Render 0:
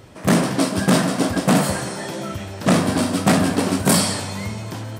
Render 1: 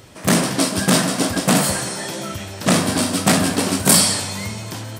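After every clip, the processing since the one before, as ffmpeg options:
ffmpeg -i in.wav -af "highshelf=frequency=2400:gain=8.5,volume=-1dB" out.wav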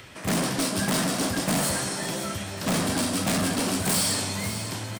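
ffmpeg -i in.wav -filter_complex "[0:a]acrossover=split=370|1500|2900[link_01][link_02][link_03][link_04];[link_03]acompressor=mode=upward:threshold=-37dB:ratio=2.5[link_05];[link_01][link_02][link_05][link_04]amix=inputs=4:normalize=0,volume=18dB,asoftclip=hard,volume=-18dB,aecho=1:1:545|1090|1635|2180:0.251|0.111|0.0486|0.0214,volume=-4dB" out.wav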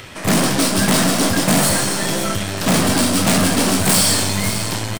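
ffmpeg -i in.wav -filter_complex "[0:a]aeval=exprs='0.119*(cos(1*acos(clip(val(0)/0.119,-1,1)))-cos(1*PI/2))+0.00944*(cos(4*acos(clip(val(0)/0.119,-1,1)))-cos(4*PI/2))+0.0211*(cos(6*acos(clip(val(0)/0.119,-1,1)))-cos(6*PI/2))':channel_layout=same,asplit=2[link_01][link_02];[link_02]adelay=21,volume=-13dB[link_03];[link_01][link_03]amix=inputs=2:normalize=0,volume=9dB" out.wav

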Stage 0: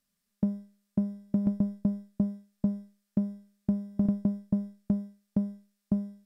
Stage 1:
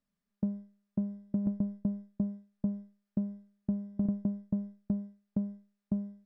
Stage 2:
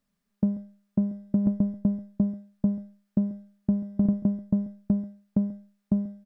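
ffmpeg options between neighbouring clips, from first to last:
ffmpeg -i in.wav -filter_complex "[0:a]asplit=2[link_01][link_02];[link_02]alimiter=level_in=1dB:limit=-24dB:level=0:latency=1:release=152,volume=-1dB,volume=-1dB[link_03];[link_01][link_03]amix=inputs=2:normalize=0,lowpass=frequency=1200:poles=1,volume=-7dB" out.wav
ffmpeg -i in.wav -af "aecho=1:1:137:0.106,volume=7.5dB" out.wav

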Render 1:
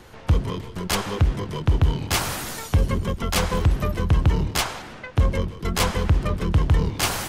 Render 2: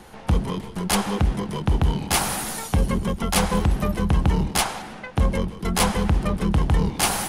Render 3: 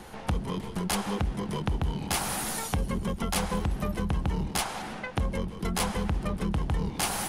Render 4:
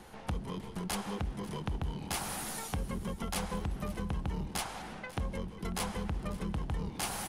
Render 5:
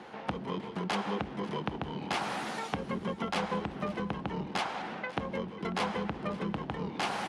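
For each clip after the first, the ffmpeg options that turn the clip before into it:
ffmpeg -i in.wav -af "equalizer=frequency=100:width_type=o:width=0.33:gain=-10,equalizer=frequency=200:width_type=o:width=0.33:gain=8,equalizer=frequency=800:width_type=o:width=0.33:gain=7,equalizer=frequency=10000:width_type=o:width=0.33:gain=9" out.wav
ffmpeg -i in.wav -af "acompressor=threshold=-29dB:ratio=2.5" out.wav
ffmpeg -i in.wav -af "aecho=1:1:543:0.119,volume=-7dB" out.wav
ffmpeg -i in.wav -af "highpass=210,lowpass=3400,volume=6.5dB" out.wav

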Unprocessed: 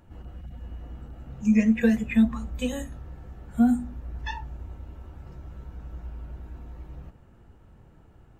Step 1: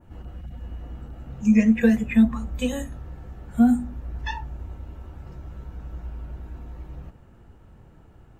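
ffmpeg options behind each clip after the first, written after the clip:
ffmpeg -i in.wav -af "adynamicequalizer=threshold=0.00224:dfrequency=4300:dqfactor=0.78:tfrequency=4300:tqfactor=0.78:attack=5:release=100:ratio=0.375:range=2:mode=cutabove:tftype=bell,volume=3dB" out.wav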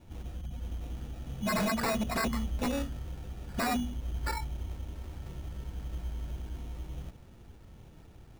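ffmpeg -i in.wav -af "highshelf=frequency=5500:gain=-11.5,acrusher=samples=14:mix=1:aa=0.000001,aeval=exprs='0.075*(abs(mod(val(0)/0.075+3,4)-2)-1)':channel_layout=same,volume=-2dB" out.wav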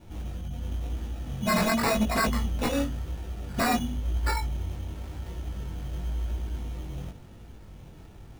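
ffmpeg -i in.wav -af "flanger=delay=18.5:depth=3.9:speed=0.94,volume=8.5dB" out.wav

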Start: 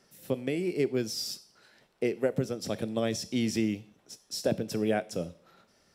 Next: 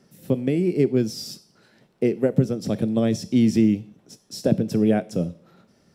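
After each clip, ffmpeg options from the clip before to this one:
ffmpeg -i in.wav -af "equalizer=frequency=170:width=0.46:gain=13" out.wav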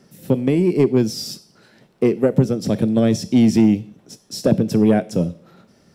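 ffmpeg -i in.wav -af "asoftclip=type=tanh:threshold=-10dB,volume=5.5dB" out.wav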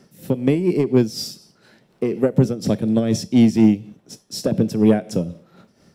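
ffmpeg -i in.wav -af "tremolo=f=4.1:d=0.61,volume=1.5dB" out.wav

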